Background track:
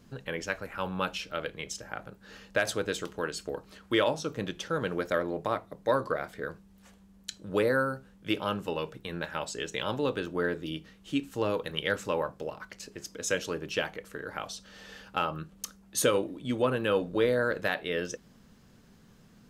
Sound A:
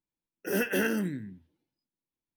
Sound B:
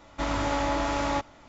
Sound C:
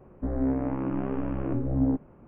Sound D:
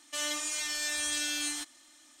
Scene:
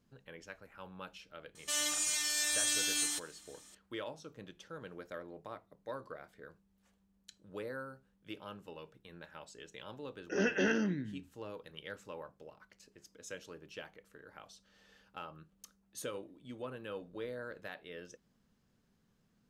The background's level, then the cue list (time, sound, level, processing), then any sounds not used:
background track −16.5 dB
0:01.55: mix in D −3.5 dB + high-shelf EQ 5,300 Hz +7.5 dB
0:09.85: mix in A −3 dB + linear-phase brick-wall low-pass 6,700 Hz
not used: B, C

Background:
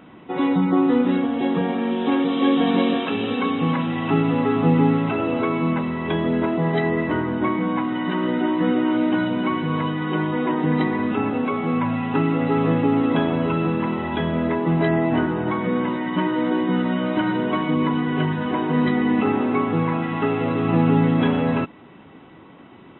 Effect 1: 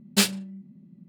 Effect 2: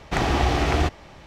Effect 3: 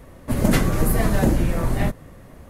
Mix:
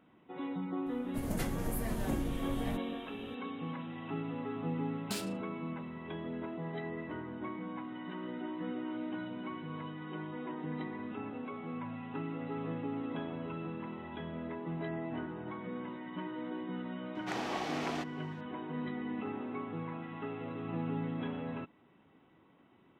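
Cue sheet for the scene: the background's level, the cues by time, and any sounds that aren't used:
background −19 dB
0:00.86: mix in 3 −17.5 dB + high-shelf EQ 6,300 Hz +4 dB
0:04.94: mix in 1 −5 dB + downward compressor 10 to 1, threshold −28 dBFS
0:17.15: mix in 2 −13.5 dB + high-pass filter 330 Hz

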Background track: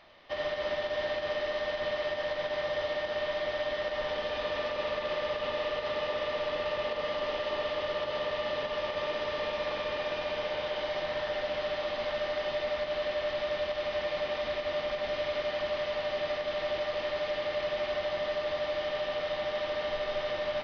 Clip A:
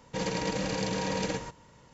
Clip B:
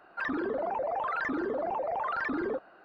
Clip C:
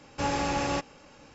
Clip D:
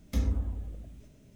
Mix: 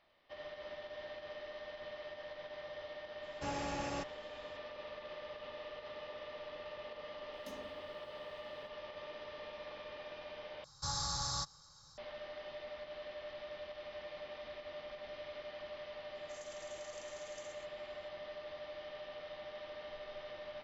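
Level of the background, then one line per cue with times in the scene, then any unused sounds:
background track −15 dB
0:03.23: mix in C −11.5 dB
0:07.33: mix in D −11.5 dB + high-pass filter 330 Hz
0:10.64: overwrite with C −7 dB + drawn EQ curve 150 Hz 0 dB, 240 Hz −22 dB, 380 Hz −20 dB, 700 Hz −12 dB, 1,200 Hz +2 dB, 2,700 Hz −25 dB, 3,900 Hz +11 dB, 9,000 Hz +6 dB
0:16.15: mix in A −11.5 dB + inverse Chebyshev high-pass filter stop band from 1,900 Hz, stop band 60 dB
not used: B

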